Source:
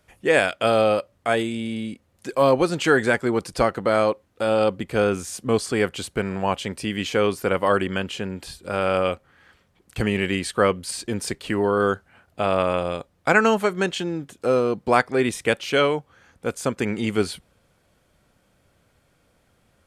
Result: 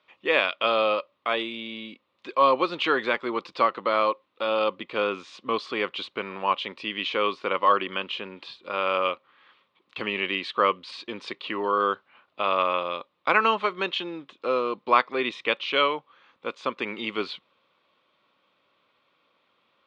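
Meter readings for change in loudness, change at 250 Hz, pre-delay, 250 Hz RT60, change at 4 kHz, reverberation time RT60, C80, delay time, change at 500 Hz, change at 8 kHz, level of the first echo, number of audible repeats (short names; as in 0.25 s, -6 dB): -3.5 dB, -10.0 dB, none, none, +1.0 dB, none, none, none, -6.0 dB, under -20 dB, none, none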